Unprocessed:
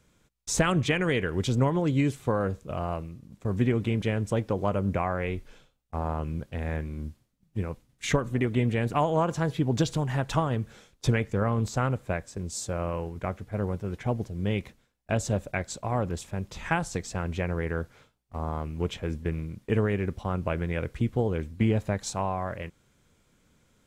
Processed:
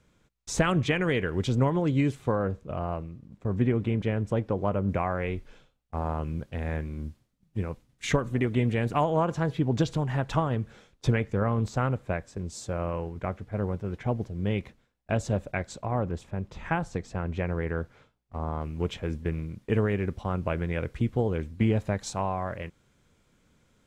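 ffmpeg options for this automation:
ffmpeg -i in.wav -af "asetnsamples=nb_out_samples=441:pad=0,asendcmd='2.35 lowpass f 1900;4.89 lowpass f 4500;5.97 lowpass f 7600;9.04 lowpass f 3400;15.85 lowpass f 1600;17.37 lowpass f 2800;18.61 lowpass f 6800',lowpass=frequency=4400:poles=1" out.wav

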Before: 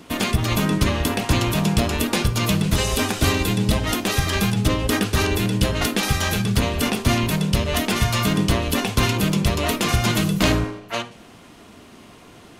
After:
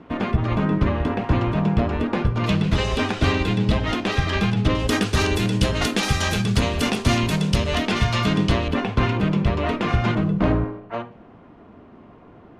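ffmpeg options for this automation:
ffmpeg -i in.wav -af "asetnsamples=nb_out_samples=441:pad=0,asendcmd='2.44 lowpass f 3400;4.75 lowpass f 7800;7.75 lowpass f 4400;8.68 lowpass f 2100;10.15 lowpass f 1200',lowpass=1600" out.wav

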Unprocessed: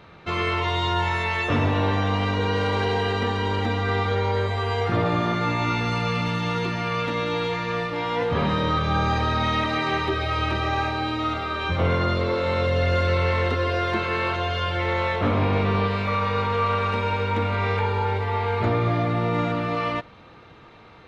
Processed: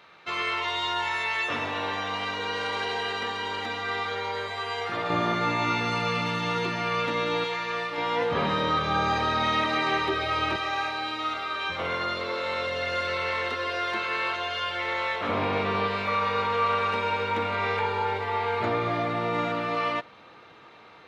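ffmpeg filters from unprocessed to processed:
ffmpeg -i in.wav -af "asetnsamples=nb_out_samples=441:pad=0,asendcmd='5.1 highpass f 290;7.44 highpass f 810;7.98 highpass f 350;10.56 highpass f 1100;15.29 highpass f 450',highpass=frequency=1200:poles=1" out.wav

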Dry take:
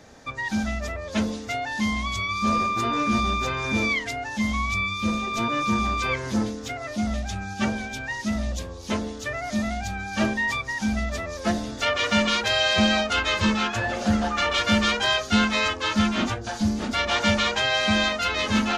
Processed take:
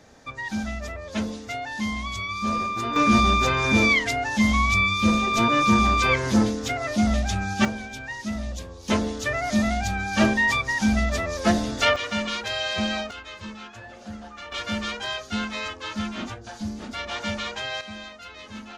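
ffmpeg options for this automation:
ffmpeg -i in.wav -af "asetnsamples=nb_out_samples=441:pad=0,asendcmd='2.96 volume volume 5dB;7.65 volume volume -3.5dB;8.88 volume volume 4dB;11.96 volume volume -6dB;13.11 volume volume -16dB;14.52 volume volume -8dB;17.81 volume volume -17dB',volume=-3dB" out.wav

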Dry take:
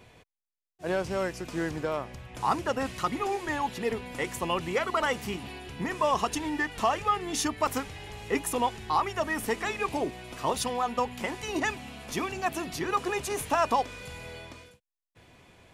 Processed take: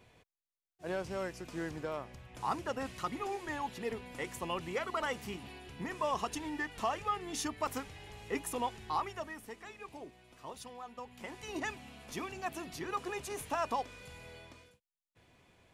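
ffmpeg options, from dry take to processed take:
ffmpeg -i in.wav -af "volume=1dB,afade=type=out:start_time=8.99:duration=0.42:silence=0.316228,afade=type=in:start_time=11.02:duration=0.49:silence=0.354813" out.wav

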